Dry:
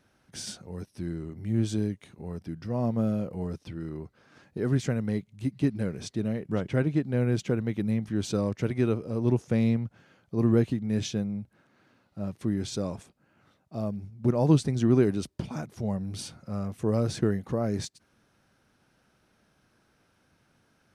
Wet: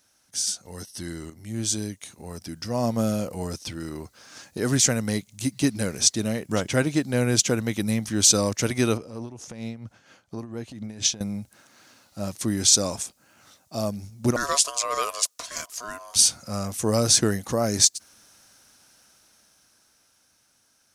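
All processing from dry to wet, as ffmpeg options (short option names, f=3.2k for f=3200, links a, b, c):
-filter_complex "[0:a]asettb=1/sr,asplit=3[a][b][c];[a]atrim=end=0.654[d];[b]atrim=start=0.65:end=1.3,asetpts=PTS-STARTPTS,afade=t=in:d=0.004:c=qsin,afade=t=out:st=0.646:d=0.004:c=qsin,equalizer=f=2.4k:t=o:w=1.2:g=5,acontrast=64,asuperstop=centerf=2400:order=8:qfactor=6.3[e];[c]atrim=start=1.296[f];[d][e]acrossfade=d=0.004:c1=hsin:c2=qsin[g];[g][f]acrossfade=d=0.004:c1=qsin:c2=hsin,asettb=1/sr,asplit=3[h][i][j];[h]atrim=end=8.974[k];[i]atrim=start=8.97:end=11.21,asetpts=PTS-STARTPTS,afade=t=in:d=0.004:c=qsin,afade=t=out:st=2.236:d=0.004:c=qsin,lowpass=f=2.7k:p=1,acompressor=threshold=-31dB:ratio=6:attack=3.2:release=140:knee=1:detection=peak,tremolo=f=4.3:d=0.66[l];[j]atrim=start=11.206[m];[k][l]acrossfade=d=0.004:c1=hsin:c2=qsin[n];[n][m]acrossfade=d=0.004:c1=qsin:c2=hsin,asettb=1/sr,asplit=3[o][p][q];[o]atrim=end=14.364[r];[p]atrim=start=14.36:end=16.16,asetpts=PTS-STARTPTS,afade=t=in:d=0.004:c=qsin,afade=t=out:st=1.796:d=0.004:c=qsin,highpass=f=930:p=1,aeval=exprs='val(0)*sin(2*PI*840*n/s)':c=same[s];[q]atrim=start=16.156[t];[r][s]acrossfade=d=0.004:c1=hsin:c2=qsin[u];[u][t]acrossfade=d=0.004:c1=qsin:c2=hsin,equalizer=f=160:t=o:w=0.67:g=-5,equalizer=f=400:t=o:w=0.67:g=-6,equalizer=f=6.3k:t=o:w=0.67:g=4,dynaudnorm=f=250:g=17:m=11dB,bass=f=250:g=-6,treble=f=4k:g=15,volume=-2dB"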